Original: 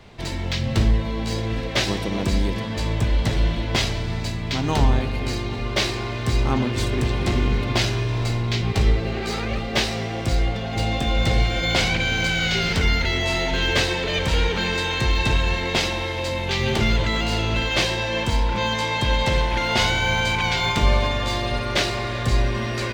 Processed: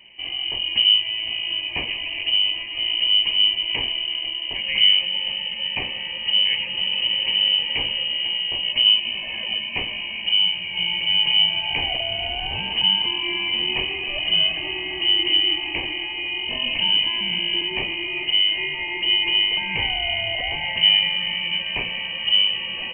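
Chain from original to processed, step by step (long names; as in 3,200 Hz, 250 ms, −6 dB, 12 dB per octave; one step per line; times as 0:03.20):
phaser with its sweep stopped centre 660 Hz, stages 4
voice inversion scrambler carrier 3,000 Hz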